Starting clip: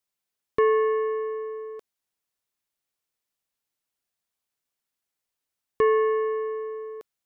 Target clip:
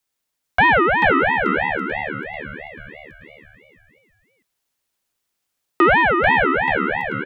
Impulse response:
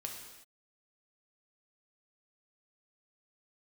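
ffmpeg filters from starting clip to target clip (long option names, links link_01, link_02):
-filter_complex "[0:a]asplit=7[link_01][link_02][link_03][link_04][link_05][link_06][link_07];[link_02]adelay=438,afreqshift=74,volume=-3.5dB[link_08];[link_03]adelay=876,afreqshift=148,volume=-9.9dB[link_09];[link_04]adelay=1314,afreqshift=222,volume=-16.3dB[link_10];[link_05]adelay=1752,afreqshift=296,volume=-22.6dB[link_11];[link_06]adelay=2190,afreqshift=370,volume=-29dB[link_12];[link_07]adelay=2628,afreqshift=444,volume=-35.4dB[link_13];[link_01][link_08][link_09][link_10][link_11][link_12][link_13]amix=inputs=7:normalize=0,acontrast=70,aeval=exprs='val(0)*sin(2*PI*1100*n/s+1100*0.3/3*sin(2*PI*3*n/s))':channel_layout=same,volume=3dB"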